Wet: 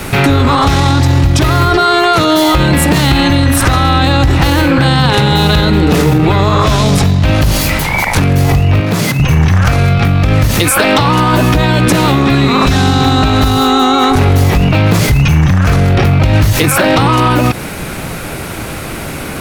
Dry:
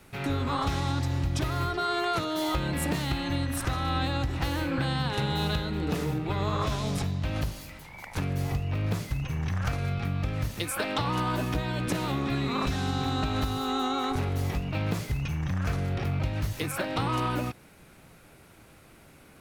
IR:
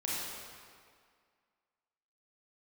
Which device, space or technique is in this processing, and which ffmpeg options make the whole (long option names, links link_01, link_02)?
loud club master: -filter_complex "[0:a]acompressor=threshold=-31dB:ratio=3,asoftclip=type=hard:threshold=-25dB,alimiter=level_in=33dB:limit=-1dB:release=50:level=0:latency=1,asettb=1/sr,asplit=3[link_01][link_02][link_03];[link_01]atrim=end=8.804[link_04];[link_02]atrim=start=8.8:end=9.2,asetpts=PTS-STARTPTS,afade=type=in:duration=0.004:curve=qsin,afade=type=out:start_time=0.396:duration=0.004:curve=qsin,highpass=frequency=130:width=0.5412,highpass=frequency=130:width=1.3066[link_05];[link_03]atrim=start=9.196[link_06];[link_04][link_05]acrossfade=duration=0.004:curve1=hsin:curve2=qsin[link_07];[link_07][link_06]acrossfade=duration=0.004:curve1=qsin:curve2=hsin,volume=-1dB"